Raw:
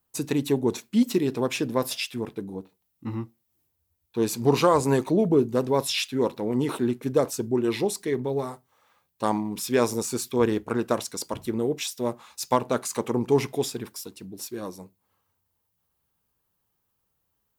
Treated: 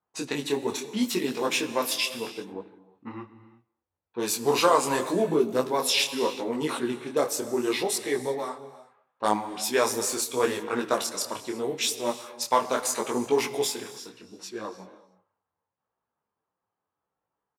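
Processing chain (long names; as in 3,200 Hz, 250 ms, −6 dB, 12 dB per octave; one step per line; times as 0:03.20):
high-pass filter 830 Hz 6 dB per octave
far-end echo of a speakerphone 230 ms, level −24 dB
low-pass that shuts in the quiet parts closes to 1,100 Hz, open at −28.5 dBFS
reverb whose tail is shaped and stops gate 390 ms flat, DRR 12 dB
micro pitch shift up and down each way 26 cents
level +8 dB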